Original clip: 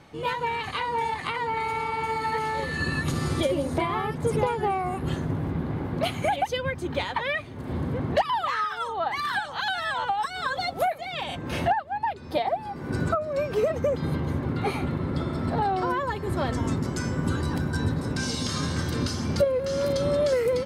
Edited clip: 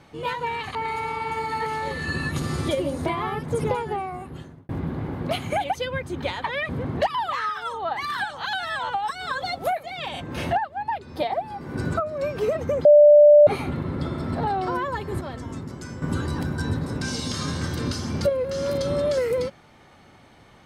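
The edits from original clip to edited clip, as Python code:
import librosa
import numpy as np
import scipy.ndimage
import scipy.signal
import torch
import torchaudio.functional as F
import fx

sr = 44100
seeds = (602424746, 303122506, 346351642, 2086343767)

y = fx.edit(x, sr, fx.cut(start_s=0.75, length_s=0.72),
    fx.fade_out_span(start_s=4.41, length_s=1.0),
    fx.cut(start_s=7.41, length_s=0.43),
    fx.bleep(start_s=14.0, length_s=0.62, hz=591.0, db=-8.0),
    fx.clip_gain(start_s=16.36, length_s=0.81, db=-7.5), tone=tone)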